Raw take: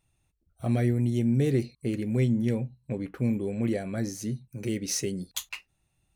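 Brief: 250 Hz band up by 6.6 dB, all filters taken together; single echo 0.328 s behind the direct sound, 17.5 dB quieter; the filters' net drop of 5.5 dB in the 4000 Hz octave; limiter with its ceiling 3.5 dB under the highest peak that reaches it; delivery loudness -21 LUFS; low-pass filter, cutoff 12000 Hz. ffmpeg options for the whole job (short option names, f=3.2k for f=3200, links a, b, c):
-af "lowpass=12k,equalizer=f=250:t=o:g=7.5,equalizer=f=4k:t=o:g=-8,alimiter=limit=-14dB:level=0:latency=1,aecho=1:1:328:0.133,volume=4dB"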